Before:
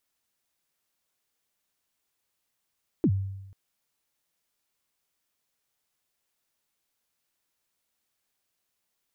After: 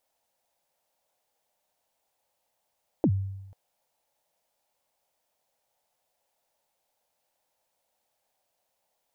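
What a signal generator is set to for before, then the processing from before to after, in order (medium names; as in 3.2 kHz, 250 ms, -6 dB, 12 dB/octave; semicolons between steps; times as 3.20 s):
kick drum length 0.49 s, from 380 Hz, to 97 Hz, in 64 ms, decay 0.97 s, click off, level -17 dB
high-order bell 680 Hz +13 dB 1.1 oct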